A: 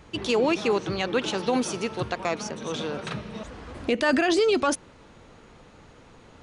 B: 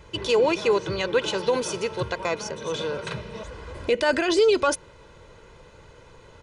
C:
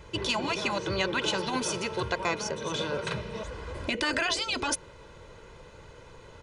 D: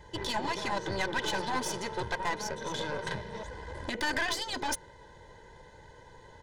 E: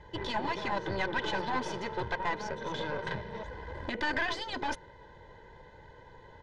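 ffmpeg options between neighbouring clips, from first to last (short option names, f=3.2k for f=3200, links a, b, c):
-af "aecho=1:1:2:0.63"
-af "afftfilt=real='re*lt(hypot(re,im),0.398)':imag='im*lt(hypot(re,im),0.398)':win_size=1024:overlap=0.75"
-af "superequalizer=9b=2:10b=0.316:11b=1.78:12b=0.355,aeval=exprs='(tanh(15.8*val(0)+0.75)-tanh(0.75))/15.8':c=same"
-af "lowpass=3.4k"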